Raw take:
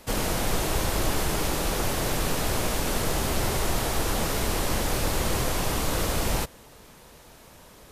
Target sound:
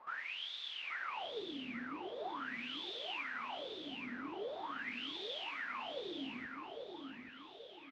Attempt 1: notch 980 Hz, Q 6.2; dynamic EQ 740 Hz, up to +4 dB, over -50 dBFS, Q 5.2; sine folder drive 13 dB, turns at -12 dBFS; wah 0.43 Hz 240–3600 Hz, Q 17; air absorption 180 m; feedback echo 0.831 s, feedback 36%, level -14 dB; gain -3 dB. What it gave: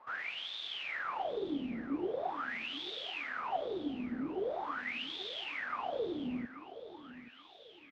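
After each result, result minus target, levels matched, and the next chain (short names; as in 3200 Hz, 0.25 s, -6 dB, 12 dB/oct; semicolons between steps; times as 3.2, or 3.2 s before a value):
sine folder: distortion -30 dB; echo-to-direct -9 dB
notch 980 Hz, Q 6.2; dynamic EQ 740 Hz, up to +4 dB, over -50 dBFS, Q 5.2; sine folder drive 13 dB, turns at -18 dBFS; wah 0.43 Hz 240–3600 Hz, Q 17; air absorption 180 m; feedback echo 0.831 s, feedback 36%, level -14 dB; gain -3 dB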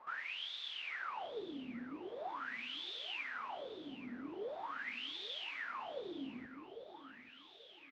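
echo-to-direct -9 dB
notch 980 Hz, Q 6.2; dynamic EQ 740 Hz, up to +4 dB, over -50 dBFS, Q 5.2; sine folder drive 13 dB, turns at -18 dBFS; wah 0.43 Hz 240–3600 Hz, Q 17; air absorption 180 m; feedback echo 0.831 s, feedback 36%, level -5 dB; gain -3 dB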